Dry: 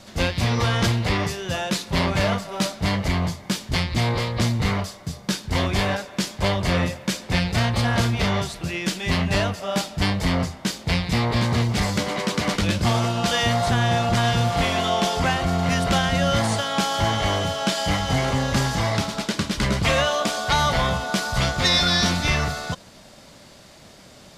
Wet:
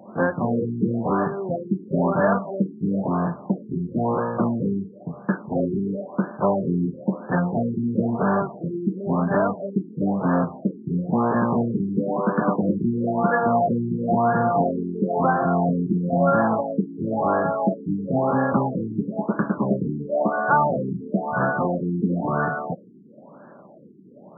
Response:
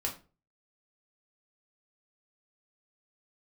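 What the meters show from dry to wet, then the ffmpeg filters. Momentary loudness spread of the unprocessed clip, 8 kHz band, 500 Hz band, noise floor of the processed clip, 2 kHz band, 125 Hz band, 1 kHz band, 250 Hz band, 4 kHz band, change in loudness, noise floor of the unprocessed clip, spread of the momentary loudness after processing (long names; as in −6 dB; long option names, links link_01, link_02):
6 LU, below −40 dB, +2.5 dB, −46 dBFS, −6.0 dB, −4.0 dB, +1.0 dB, +3.5 dB, below −40 dB, −1.0 dB, −47 dBFS, 7 LU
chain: -af "highpass=frequency=170:width=0.5412,highpass=frequency=170:width=1.3066,aeval=exprs='val(0)+0.0398*sin(2*PI*5900*n/s)':channel_layout=same,afftfilt=real='re*lt(b*sr/1024,410*pow(1800/410,0.5+0.5*sin(2*PI*0.99*pts/sr)))':imag='im*lt(b*sr/1024,410*pow(1800/410,0.5+0.5*sin(2*PI*0.99*pts/sr)))':win_size=1024:overlap=0.75,volume=4.5dB"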